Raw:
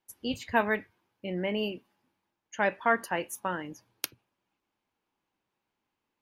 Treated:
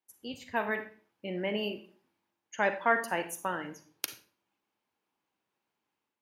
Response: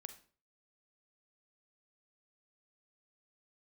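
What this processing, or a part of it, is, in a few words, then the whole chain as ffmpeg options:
far laptop microphone: -filter_complex "[1:a]atrim=start_sample=2205[s0];[0:a][s0]afir=irnorm=-1:irlink=0,highpass=f=160:p=1,dynaudnorm=f=500:g=3:m=2.24,volume=0.794"

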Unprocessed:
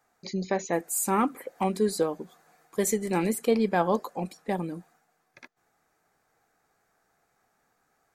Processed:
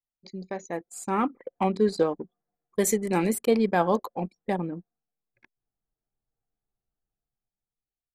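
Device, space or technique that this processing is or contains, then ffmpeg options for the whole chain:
voice memo with heavy noise removal: -filter_complex "[0:a]asettb=1/sr,asplit=3[s0][s1][s2];[s0]atrim=end=0.774[s3];[s1]atrim=start=0.77:end=2.06,asetpts=PTS-STARTPTS,afade=t=in:d=0.004:c=qsin,afade=t=out:st=1.286:d=0.004:c=qsin,lowpass=5700[s4];[s2]atrim=start=2.056[s5];[s3][s4]acrossfade=d=0.004:c1=hsin:c2=qsin[s6];[s6][s5]acrossfade=d=0.004:c1=qsin:c2=hsin,anlmdn=1,dynaudnorm=f=270:g=9:m=5.01,volume=0.422"

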